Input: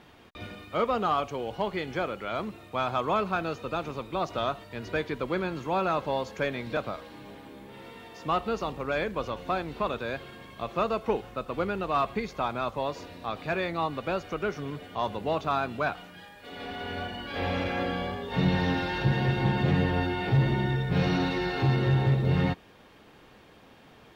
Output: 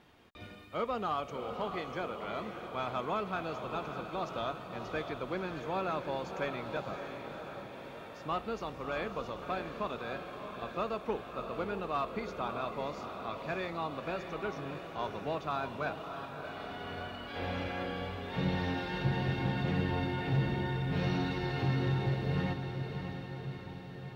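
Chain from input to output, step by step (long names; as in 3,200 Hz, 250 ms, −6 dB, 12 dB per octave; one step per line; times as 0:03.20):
feedback delay with all-pass diffusion 633 ms, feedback 62%, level −7 dB
level −7.5 dB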